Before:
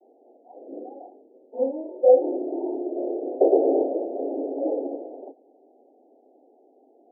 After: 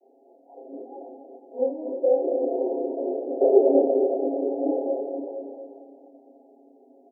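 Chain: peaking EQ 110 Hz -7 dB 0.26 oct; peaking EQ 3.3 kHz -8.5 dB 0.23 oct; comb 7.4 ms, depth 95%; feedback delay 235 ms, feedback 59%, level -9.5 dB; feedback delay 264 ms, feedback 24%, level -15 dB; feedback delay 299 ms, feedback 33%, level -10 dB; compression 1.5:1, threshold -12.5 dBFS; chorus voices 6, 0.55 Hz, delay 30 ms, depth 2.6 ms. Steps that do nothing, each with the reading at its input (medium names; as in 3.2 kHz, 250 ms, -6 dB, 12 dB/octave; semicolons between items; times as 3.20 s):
peaking EQ 110 Hz: input has nothing below 230 Hz; peaking EQ 3.3 kHz: input has nothing above 850 Hz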